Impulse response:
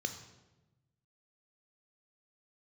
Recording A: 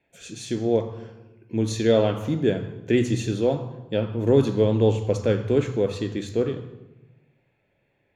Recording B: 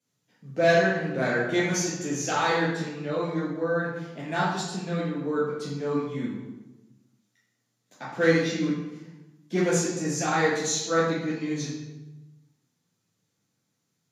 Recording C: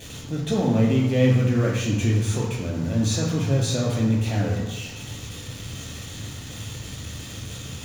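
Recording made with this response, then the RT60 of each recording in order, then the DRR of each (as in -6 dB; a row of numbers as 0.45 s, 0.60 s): A; 1.1 s, 1.1 s, 1.1 s; 7.0 dB, -7.5 dB, -3.0 dB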